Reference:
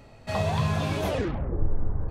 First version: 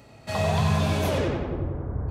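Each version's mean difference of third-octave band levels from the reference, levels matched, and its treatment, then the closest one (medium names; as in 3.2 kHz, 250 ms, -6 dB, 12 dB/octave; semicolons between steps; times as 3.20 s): 2.5 dB: high-pass 67 Hz; treble shelf 4.7 kHz +6 dB; filtered feedback delay 91 ms, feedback 58%, low-pass 4.9 kHz, level -3.5 dB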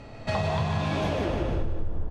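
5.0 dB: low-pass 6.1 kHz 12 dB/octave; feedback delay 150 ms, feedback 48%, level -4 dB; Schroeder reverb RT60 1.9 s, combs from 25 ms, DRR 5 dB; compression 6:1, threshold -30 dBFS, peak gain reduction 15.5 dB; trim +6 dB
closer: first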